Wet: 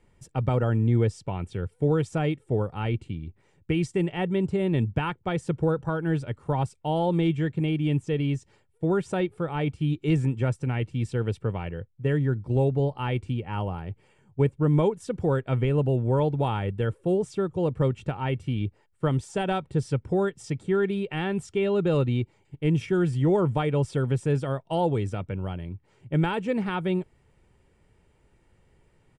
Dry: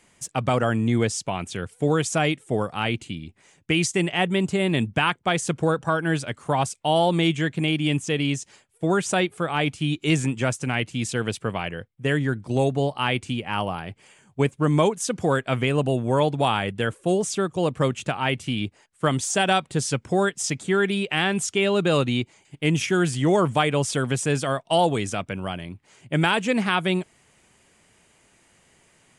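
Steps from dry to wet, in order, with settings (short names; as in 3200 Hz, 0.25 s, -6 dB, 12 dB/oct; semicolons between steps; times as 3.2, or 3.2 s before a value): tilt -3.5 dB/oct; notch 6500 Hz, Q 9.9; comb 2.2 ms, depth 35%; gain -8 dB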